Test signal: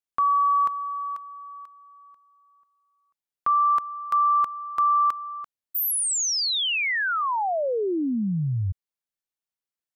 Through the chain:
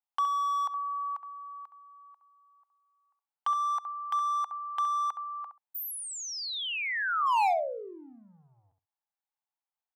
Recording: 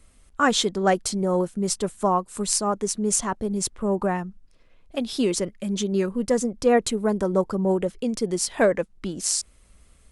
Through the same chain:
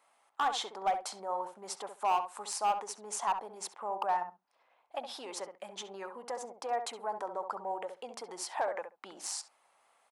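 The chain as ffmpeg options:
ffmpeg -i in.wav -filter_complex "[0:a]equalizer=frequency=8300:width=0.43:gain=-9,acompressor=threshold=-24dB:ratio=10:attack=2.5:release=134:knee=6:detection=peak,highpass=frequency=820:width_type=q:width=4.9,volume=18.5dB,asoftclip=hard,volume=-18.5dB,asplit=2[link_01][link_02];[link_02]adelay=67,lowpass=frequency=1600:poles=1,volume=-7.5dB,asplit=2[link_03][link_04];[link_04]adelay=67,lowpass=frequency=1600:poles=1,volume=0.15[link_05];[link_03][link_05]amix=inputs=2:normalize=0[link_06];[link_01][link_06]amix=inputs=2:normalize=0,volume=-5dB" out.wav

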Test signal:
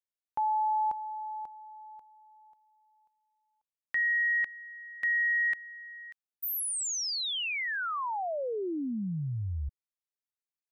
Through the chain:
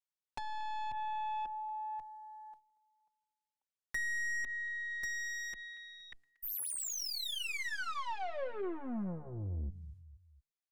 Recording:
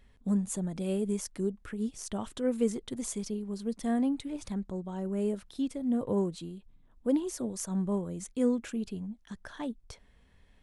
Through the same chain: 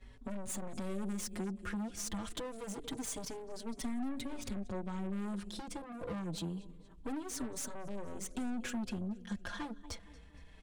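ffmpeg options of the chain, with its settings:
ffmpeg -i in.wav -filter_complex "[0:a]agate=range=-11dB:threshold=-59dB:ratio=3:release=188:detection=rms,acrossover=split=190|6000[link_01][link_02][link_03];[link_02]acompressor=threshold=-34dB:ratio=10:attack=19:release=168:knee=2.83:detection=peak[link_04];[link_01][link_04][link_03]amix=inputs=3:normalize=0,lowpass=9900,aecho=1:1:234|468|702:0.0708|0.0311|0.0137,aeval=exprs='(tanh(112*val(0)+0.55)-tanh(0.55))/112':channel_layout=same,bandreject=frequency=142.2:width_type=h:width=4,bandreject=frequency=284.4:width_type=h:width=4,bandreject=frequency=426.6:width_type=h:width=4,bandreject=frequency=568.8:width_type=h:width=4,bandreject=frequency=711:width_type=h:width=4,acompressor=threshold=-48dB:ratio=4:attack=91:release=140:knee=6,asplit=2[link_05][link_06];[link_06]adelay=4.8,afreqshift=-0.26[link_07];[link_05][link_07]amix=inputs=2:normalize=1,volume=11.5dB" out.wav

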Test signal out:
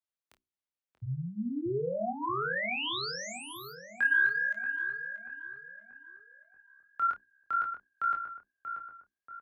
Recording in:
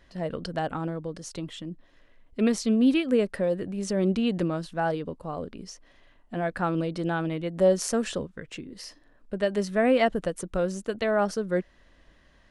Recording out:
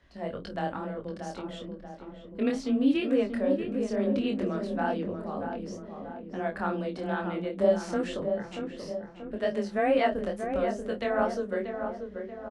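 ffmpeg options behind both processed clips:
ffmpeg -i in.wav -filter_complex "[0:a]acrossover=split=4500[link_01][link_02];[link_02]acompressor=threshold=-42dB:ratio=4:attack=1:release=60[link_03];[link_01][link_03]amix=inputs=2:normalize=0,highshelf=frequency=6600:gain=-8.5,bandreject=frequency=60:width_type=h:width=6,bandreject=frequency=120:width_type=h:width=6,bandreject=frequency=180:width_type=h:width=6,bandreject=frequency=240:width_type=h:width=6,bandreject=frequency=300:width_type=h:width=6,bandreject=frequency=360:width_type=h:width=6,flanger=delay=19.5:depth=6.4:speed=2.2,afreqshift=18,asplit=2[link_04][link_05];[link_05]adelay=30,volume=-11.5dB[link_06];[link_04][link_06]amix=inputs=2:normalize=0,asplit=2[link_07][link_08];[link_08]adelay=634,lowpass=frequency=1600:poles=1,volume=-6.5dB,asplit=2[link_09][link_10];[link_10]adelay=634,lowpass=frequency=1600:poles=1,volume=0.54,asplit=2[link_11][link_12];[link_12]adelay=634,lowpass=frequency=1600:poles=1,volume=0.54,asplit=2[link_13][link_14];[link_14]adelay=634,lowpass=frequency=1600:poles=1,volume=0.54,asplit=2[link_15][link_16];[link_16]adelay=634,lowpass=frequency=1600:poles=1,volume=0.54,asplit=2[link_17][link_18];[link_18]adelay=634,lowpass=frequency=1600:poles=1,volume=0.54,asplit=2[link_19][link_20];[link_20]adelay=634,lowpass=frequency=1600:poles=1,volume=0.54[link_21];[link_07][link_09][link_11][link_13][link_15][link_17][link_19][link_21]amix=inputs=8:normalize=0" out.wav

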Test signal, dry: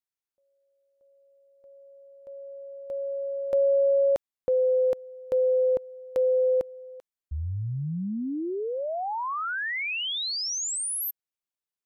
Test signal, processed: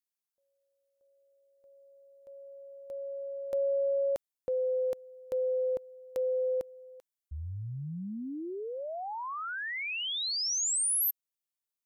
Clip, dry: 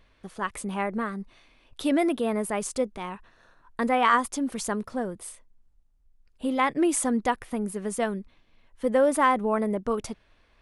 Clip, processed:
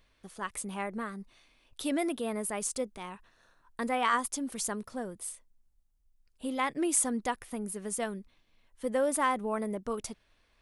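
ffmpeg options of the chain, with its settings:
ffmpeg -i in.wav -af "highshelf=frequency=4400:gain=10.5,volume=-7.5dB" out.wav

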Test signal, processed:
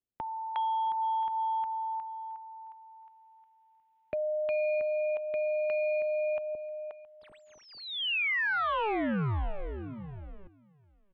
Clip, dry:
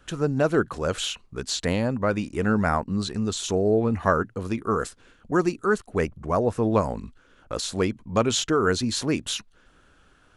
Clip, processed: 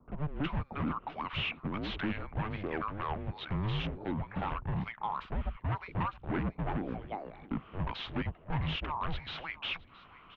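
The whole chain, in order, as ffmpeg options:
ffmpeg -i in.wav -filter_complex "[0:a]acompressor=threshold=-29dB:ratio=8,acrossover=split=880[link_01][link_02];[link_02]adelay=360[link_03];[link_01][link_03]amix=inputs=2:normalize=0,volume=33dB,asoftclip=hard,volume=-33dB,asplit=2[link_04][link_05];[link_05]aecho=0:1:670:0.1[link_06];[link_04][link_06]amix=inputs=2:normalize=0,highpass=frequency=310:width_type=q:width=0.5412,highpass=frequency=310:width_type=q:width=1.307,lowpass=frequency=3400:width_type=q:width=0.5176,lowpass=frequency=3400:width_type=q:width=0.7071,lowpass=frequency=3400:width_type=q:width=1.932,afreqshift=-300,volume=5.5dB" out.wav

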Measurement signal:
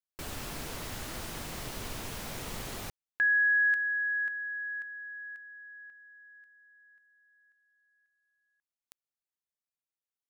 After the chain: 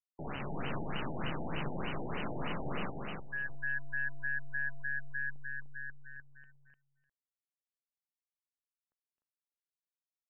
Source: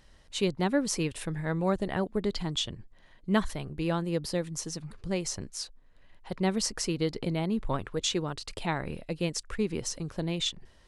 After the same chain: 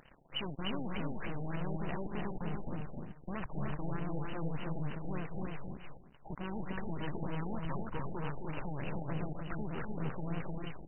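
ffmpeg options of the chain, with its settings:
ffmpeg -i in.wav -af "lowshelf=frequency=120:width_type=q:width=3:gain=-6,acompressor=threshold=-27dB:ratio=6:release=135:knee=1,aeval=exprs='(tanh(224*val(0)+0.6)-tanh(0.6))/224':channel_layout=same,aexciter=amount=3.7:drive=8.2:freq=3200,tremolo=f=140:d=0.4,aeval=exprs='sgn(val(0))*max(abs(val(0))-0.00158,0)':channel_layout=same,aecho=1:1:262|300|600|656:0.447|0.668|0.106|0.106,afftfilt=real='re*lt(b*sr/1024,860*pow(3100/860,0.5+0.5*sin(2*PI*3.3*pts/sr)))':imag='im*lt(b*sr/1024,860*pow(3100/860,0.5+0.5*sin(2*PI*3.3*pts/sr)))':win_size=1024:overlap=0.75,volume=14dB" out.wav

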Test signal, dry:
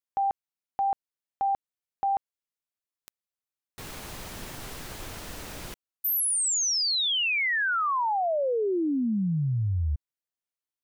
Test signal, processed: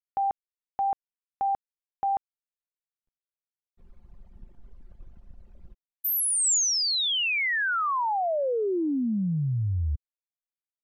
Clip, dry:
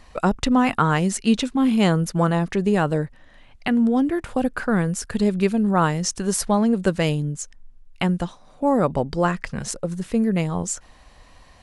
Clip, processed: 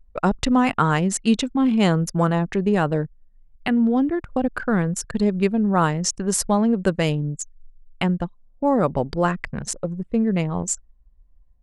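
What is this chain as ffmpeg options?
ffmpeg -i in.wav -af "anlmdn=39.8,adynamicequalizer=threshold=0.00708:dfrequency=7300:dqfactor=3:tfrequency=7300:tqfactor=3:attack=5:release=100:ratio=0.45:range=2:mode=boostabove:tftype=bell" out.wav

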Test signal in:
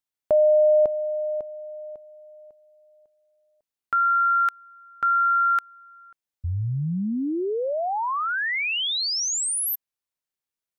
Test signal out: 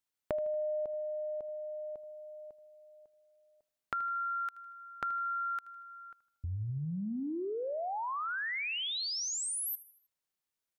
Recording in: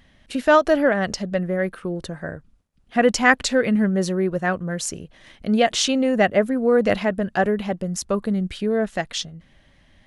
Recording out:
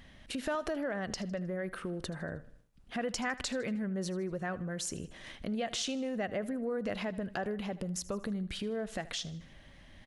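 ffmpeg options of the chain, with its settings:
ffmpeg -i in.wav -filter_complex "[0:a]acompressor=threshold=-39dB:ratio=3:attack=7:release=80:knee=6:detection=peak,asplit=2[link_01][link_02];[link_02]aecho=0:1:78|156|234|312:0.126|0.0604|0.029|0.0139[link_03];[link_01][link_03]amix=inputs=2:normalize=0" out.wav

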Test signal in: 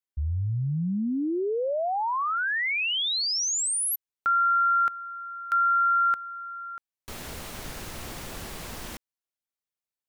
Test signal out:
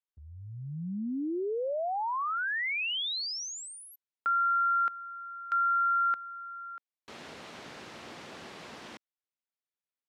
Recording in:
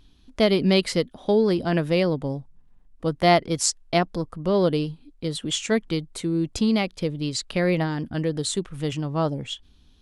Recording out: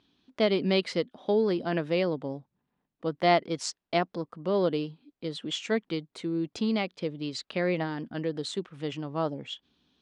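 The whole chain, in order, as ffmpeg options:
ffmpeg -i in.wav -af "highpass=200,lowpass=4500,volume=-4.5dB" out.wav

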